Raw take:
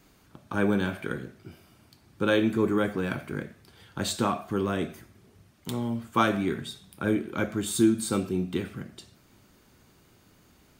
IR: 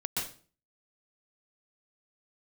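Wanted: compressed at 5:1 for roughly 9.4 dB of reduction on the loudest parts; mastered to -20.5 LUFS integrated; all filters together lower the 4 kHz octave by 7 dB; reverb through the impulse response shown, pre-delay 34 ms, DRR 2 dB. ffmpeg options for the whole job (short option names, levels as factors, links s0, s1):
-filter_complex "[0:a]equalizer=f=4000:t=o:g=-8.5,acompressor=threshold=0.0501:ratio=5,asplit=2[s0][s1];[1:a]atrim=start_sample=2205,adelay=34[s2];[s1][s2]afir=irnorm=-1:irlink=0,volume=0.447[s3];[s0][s3]amix=inputs=2:normalize=0,volume=3.35"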